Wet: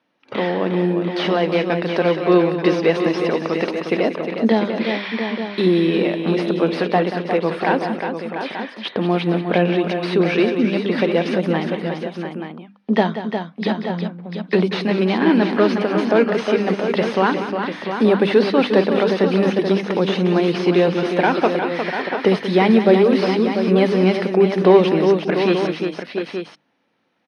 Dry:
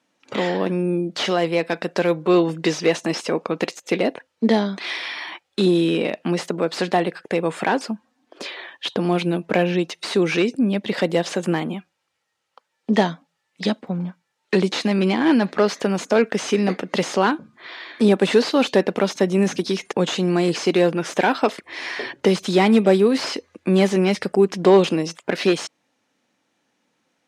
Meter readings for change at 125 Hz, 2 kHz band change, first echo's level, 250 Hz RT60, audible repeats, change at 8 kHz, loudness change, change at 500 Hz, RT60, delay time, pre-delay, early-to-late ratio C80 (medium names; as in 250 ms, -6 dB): +2.5 dB, +2.0 dB, -11.5 dB, no reverb, 4, under -10 dB, +2.5 dB, +3.0 dB, no reverb, 184 ms, no reverb, no reverb